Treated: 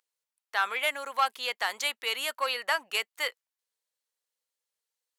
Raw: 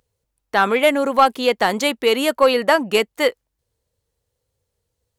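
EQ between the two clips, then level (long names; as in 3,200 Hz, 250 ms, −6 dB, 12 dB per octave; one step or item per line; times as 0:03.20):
high-pass filter 1,200 Hz 12 dB per octave
−7.0 dB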